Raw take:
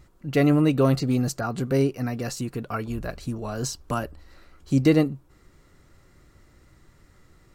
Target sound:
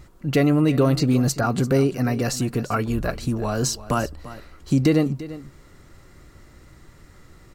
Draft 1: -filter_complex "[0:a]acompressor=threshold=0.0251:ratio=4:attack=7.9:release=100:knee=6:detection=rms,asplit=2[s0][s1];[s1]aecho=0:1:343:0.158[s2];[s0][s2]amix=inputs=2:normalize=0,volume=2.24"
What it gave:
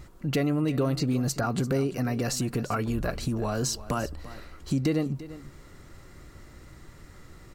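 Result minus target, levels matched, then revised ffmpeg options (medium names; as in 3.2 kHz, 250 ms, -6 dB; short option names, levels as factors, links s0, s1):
compression: peak gain reduction +8 dB
-filter_complex "[0:a]acompressor=threshold=0.0841:ratio=4:attack=7.9:release=100:knee=6:detection=rms,asplit=2[s0][s1];[s1]aecho=0:1:343:0.158[s2];[s0][s2]amix=inputs=2:normalize=0,volume=2.24"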